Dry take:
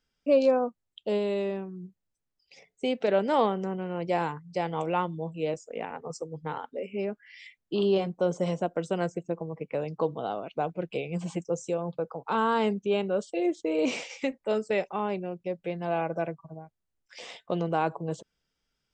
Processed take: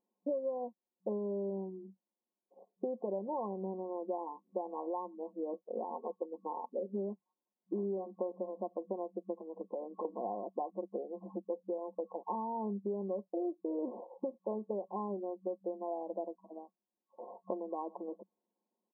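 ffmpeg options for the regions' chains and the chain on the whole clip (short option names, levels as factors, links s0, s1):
-filter_complex "[0:a]asettb=1/sr,asplit=3[s0][s1][s2];[s0]atrim=end=9.404[s3];[s1]atrim=start=9.4:end=10.05,asetpts=PTS-STARTPTS,afade=t=in:d=0.004:c=qsin,afade=t=out:st=0.646:d=0.004:c=qsin,equalizer=f=460:w=0.42:g=6,acompressor=threshold=0.0158:ratio=6:attack=3.2:release=140:knee=1:detection=peak[s4];[s2]atrim=start=10.046[s5];[s3][s4]acrossfade=d=0.004:c1=hsin:c2=qsin[s6];[s6][s5]acrossfade=d=0.004:c1=qsin:c2=hsin,aecho=1:1:5.6:0.48,acompressor=threshold=0.0224:ratio=12,afftfilt=real='re*between(b*sr/4096,190,1100)':imag='im*between(b*sr/4096,190,1100)':win_size=4096:overlap=0.75"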